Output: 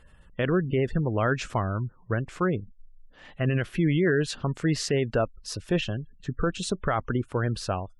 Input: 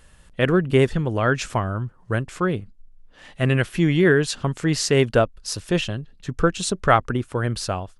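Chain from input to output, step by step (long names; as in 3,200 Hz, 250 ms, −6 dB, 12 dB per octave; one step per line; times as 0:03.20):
gate on every frequency bin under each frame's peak −30 dB strong
high-shelf EQ 5,400 Hz −9 dB
brickwall limiter −12.5 dBFS, peak gain reduction 10 dB
level −2.5 dB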